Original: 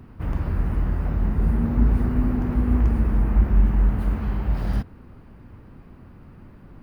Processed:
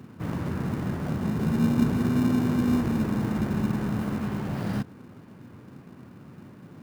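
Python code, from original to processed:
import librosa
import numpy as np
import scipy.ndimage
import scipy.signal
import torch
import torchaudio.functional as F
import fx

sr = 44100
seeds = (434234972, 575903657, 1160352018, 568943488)

p1 = scipy.signal.sosfilt(scipy.signal.butter(4, 120.0, 'highpass', fs=sr, output='sos'), x)
p2 = fx.sample_hold(p1, sr, seeds[0], rate_hz=1300.0, jitter_pct=0)
y = p1 + (p2 * 10.0 ** (-8.0 / 20.0))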